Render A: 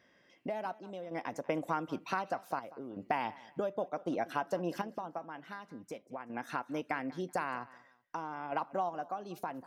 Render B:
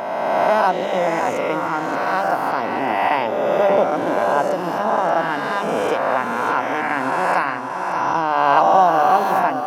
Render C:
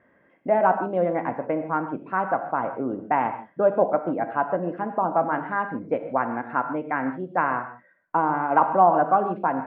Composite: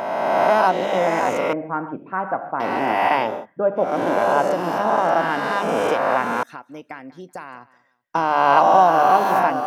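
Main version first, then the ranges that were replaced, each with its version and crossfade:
B
1.53–2.6 from C
3.34–3.87 from C, crossfade 0.24 s
6.43–8.15 from A

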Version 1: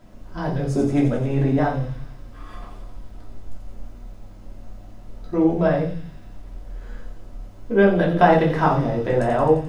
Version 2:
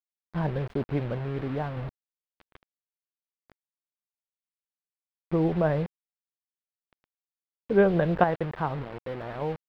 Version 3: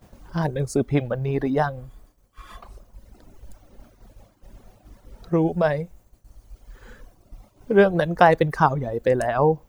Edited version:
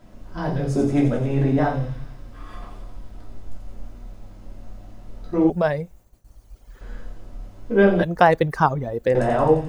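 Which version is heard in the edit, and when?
1
5.5–6.81 from 3
8.03–9.15 from 3
not used: 2

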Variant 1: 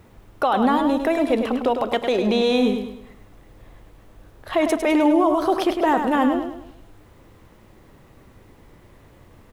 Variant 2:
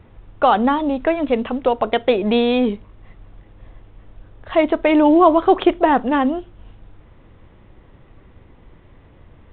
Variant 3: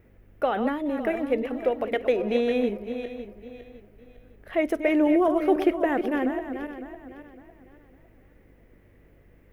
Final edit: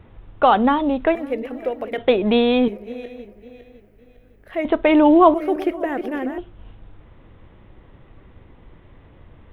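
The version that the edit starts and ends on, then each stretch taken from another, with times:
2
1.15–1.98 from 3
2.68–4.65 from 3
5.34–6.38 from 3
not used: 1

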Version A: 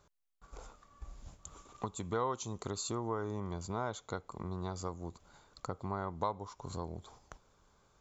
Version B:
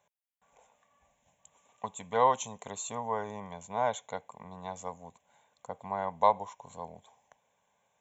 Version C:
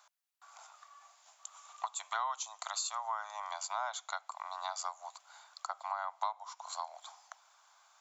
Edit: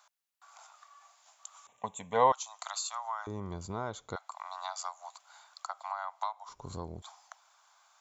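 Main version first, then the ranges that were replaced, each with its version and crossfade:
C
1.67–2.32 from B
3.27–4.16 from A
6.49–7.02 from A

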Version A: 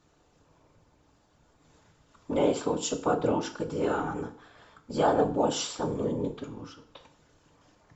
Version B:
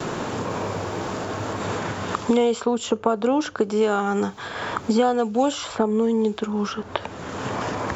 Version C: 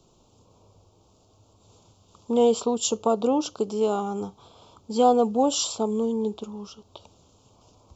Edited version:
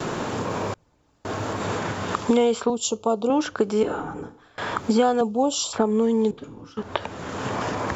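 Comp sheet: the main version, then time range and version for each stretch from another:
B
0.74–1.25 from A
2.7–3.3 from C
3.83–4.58 from A
5.21–5.73 from C
6.31–6.77 from A

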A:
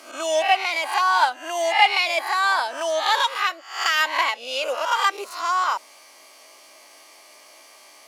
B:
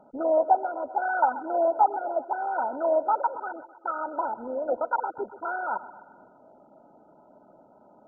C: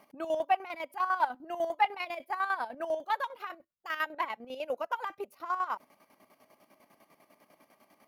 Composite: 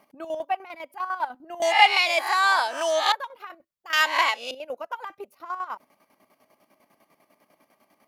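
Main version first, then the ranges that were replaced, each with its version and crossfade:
C
1.62–3.12 from A
3.93–4.51 from A
not used: B

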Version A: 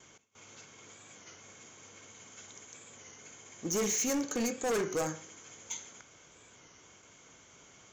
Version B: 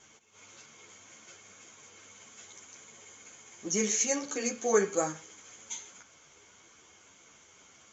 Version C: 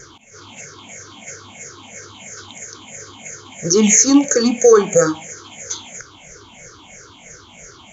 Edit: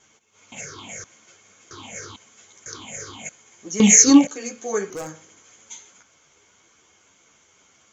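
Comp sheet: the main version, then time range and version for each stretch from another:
B
0.52–1.04 from C
1.71–2.16 from C
2.66–3.29 from C
3.8–4.27 from C
4.9–5.43 from A

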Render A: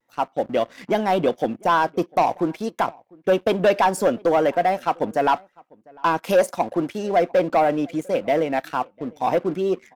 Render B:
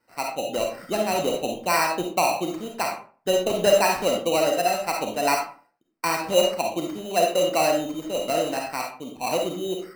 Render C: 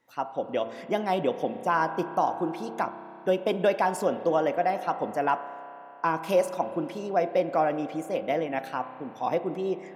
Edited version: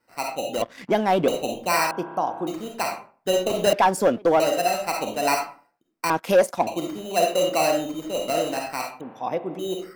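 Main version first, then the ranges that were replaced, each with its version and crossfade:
B
0.62–1.28 from A
1.91–2.47 from C
3.73–4.4 from A
6.1–6.67 from A
9.01–9.59 from C

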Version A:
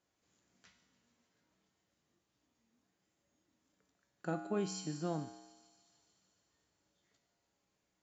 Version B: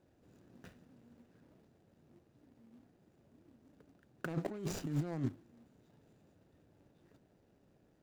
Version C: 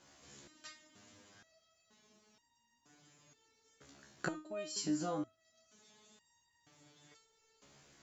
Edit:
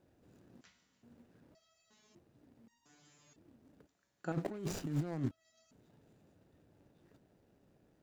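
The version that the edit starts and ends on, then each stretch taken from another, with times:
B
0.61–1.03 from A
1.55–2.15 from C
2.68–3.36 from C
3.87–4.32 from A
5.31–5.71 from C

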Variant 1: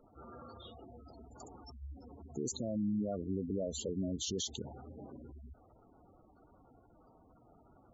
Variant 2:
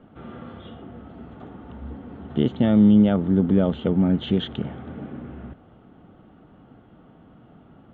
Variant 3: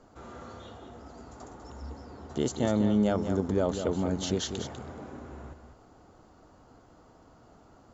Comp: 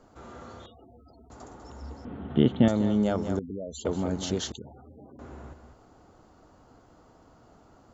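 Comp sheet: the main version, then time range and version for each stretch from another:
3
0.66–1.3 from 1
2.05–2.68 from 2
3.39–3.85 from 1
4.52–5.19 from 1

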